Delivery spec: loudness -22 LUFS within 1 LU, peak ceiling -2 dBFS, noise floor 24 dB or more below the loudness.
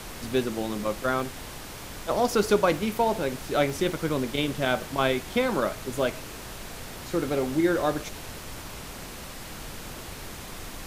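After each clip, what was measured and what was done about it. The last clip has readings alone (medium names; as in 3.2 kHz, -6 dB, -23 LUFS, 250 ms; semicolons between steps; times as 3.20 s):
dropouts 4; longest dropout 1.1 ms; noise floor -40 dBFS; noise floor target -51 dBFS; loudness -27.0 LUFS; peak level -8.5 dBFS; loudness target -22.0 LUFS
-> interpolate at 1.20/2.77/3.70/7.27 s, 1.1 ms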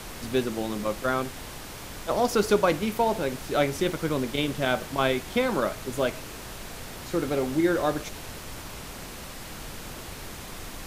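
dropouts 0; noise floor -40 dBFS; noise floor target -51 dBFS
-> noise print and reduce 11 dB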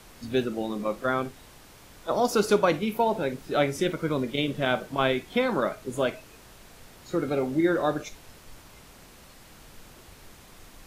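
noise floor -51 dBFS; loudness -27.0 LUFS; peak level -8.5 dBFS; loudness target -22.0 LUFS
-> trim +5 dB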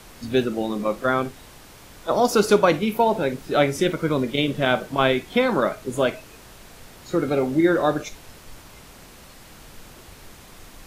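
loudness -22.0 LUFS; peak level -3.5 dBFS; noise floor -46 dBFS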